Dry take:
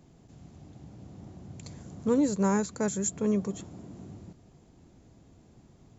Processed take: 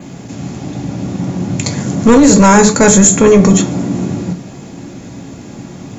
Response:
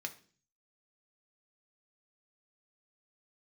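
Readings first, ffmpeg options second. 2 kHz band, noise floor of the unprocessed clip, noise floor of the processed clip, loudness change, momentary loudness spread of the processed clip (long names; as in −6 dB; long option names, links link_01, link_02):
+25.5 dB, −58 dBFS, −31 dBFS, +18.5 dB, 18 LU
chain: -filter_complex "[1:a]atrim=start_sample=2205,atrim=end_sample=6174[link_01];[0:a][link_01]afir=irnorm=-1:irlink=0,adynamicequalizer=threshold=0.00141:dfrequency=5400:dqfactor=5.4:tfrequency=5400:tqfactor=5.4:attack=5:release=100:ratio=0.375:range=1.5:mode=cutabove:tftype=bell,apsyclip=32dB,volume=-2dB"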